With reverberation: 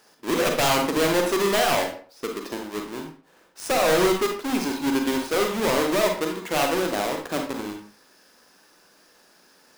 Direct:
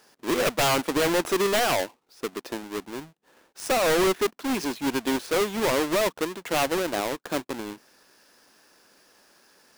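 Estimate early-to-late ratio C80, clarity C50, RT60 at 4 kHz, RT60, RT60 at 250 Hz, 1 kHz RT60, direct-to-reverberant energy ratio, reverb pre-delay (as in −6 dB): 10.5 dB, 5.5 dB, 0.30 s, 0.45 s, 0.40 s, 0.45 s, 2.5 dB, 36 ms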